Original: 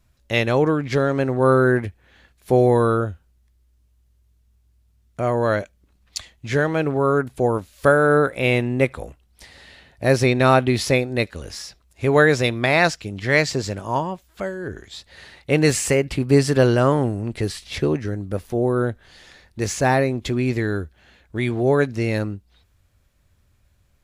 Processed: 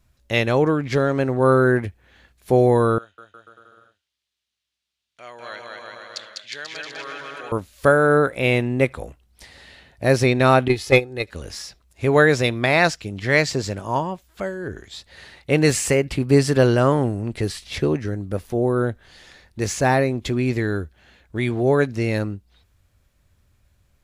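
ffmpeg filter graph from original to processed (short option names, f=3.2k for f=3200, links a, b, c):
-filter_complex "[0:a]asettb=1/sr,asplit=3[a][b][c];[a]atrim=end=2.984[d];[b]atrim=start=2.98:end=7.52,asetpts=PTS-STARTPTS,afade=t=in:d=0.004:c=qsin,afade=t=out:st=4.536:d=0.004:c=qsin,bandpass=f=3.5k:t=q:w=1.7,aecho=1:1:200|360|488|590.4|672.3|737.9|790.3|832.2|865.8:0.794|0.631|0.501|0.398|0.316|0.251|0.2|0.158|0.126,atrim=end_sample=200214[e];[c]atrim=start=7.516[f];[d][e]acrossfade=d=0.004:c1=hsin:c2=qsin[g];[g][f]acrossfade=d=0.004:c1=qsin:c2=hsin,asettb=1/sr,asplit=3[h][i][j];[h]atrim=end=10.684[k];[i]atrim=start=10.68:end=11.28,asetpts=PTS-STARTPTS,afade=t=in:d=0.004:c=qsin,afade=t=out:st=0.596:d=0.004:c=qsin,agate=range=-14dB:threshold=-17dB:ratio=16:release=100:detection=peak,aecho=1:1:2.4:0.49,atrim=end_sample=26460,acontrast=49[l];[j]atrim=start=11.276[m];[k][l]acrossfade=d=0.004:c1=hsin:c2=qsin[n];[n][m]acrossfade=d=0.004:c1=qsin:c2=hsin"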